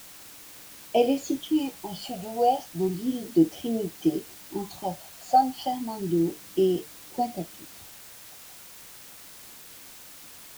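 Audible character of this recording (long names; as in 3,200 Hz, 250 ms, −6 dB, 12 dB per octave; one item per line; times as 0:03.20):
phaser sweep stages 12, 0.33 Hz, lowest notch 340–1,500 Hz
a quantiser's noise floor 8 bits, dither triangular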